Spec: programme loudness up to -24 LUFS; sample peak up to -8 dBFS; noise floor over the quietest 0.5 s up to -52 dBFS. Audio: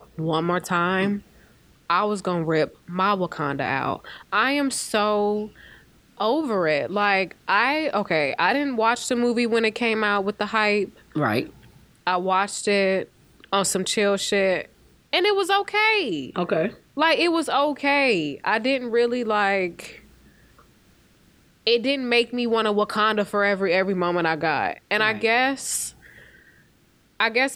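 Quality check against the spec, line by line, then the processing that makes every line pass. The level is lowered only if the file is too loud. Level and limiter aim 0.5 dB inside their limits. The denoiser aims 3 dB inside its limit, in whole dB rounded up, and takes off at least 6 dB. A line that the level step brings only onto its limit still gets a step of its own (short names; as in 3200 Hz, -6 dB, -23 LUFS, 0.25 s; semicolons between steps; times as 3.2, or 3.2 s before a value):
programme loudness -22.5 LUFS: fail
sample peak -6.0 dBFS: fail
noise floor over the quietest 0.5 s -59 dBFS: OK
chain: gain -2 dB; limiter -8.5 dBFS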